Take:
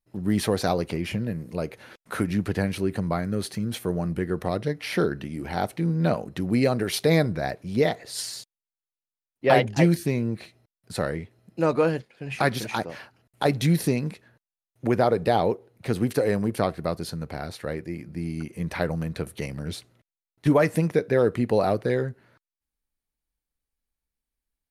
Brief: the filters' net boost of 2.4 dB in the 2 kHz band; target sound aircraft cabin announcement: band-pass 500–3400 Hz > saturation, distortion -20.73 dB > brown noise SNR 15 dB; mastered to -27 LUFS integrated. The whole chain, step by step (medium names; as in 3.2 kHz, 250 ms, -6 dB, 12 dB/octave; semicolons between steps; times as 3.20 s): band-pass 500–3400 Hz; peaking EQ 2 kHz +3.5 dB; saturation -12 dBFS; brown noise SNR 15 dB; trim +3.5 dB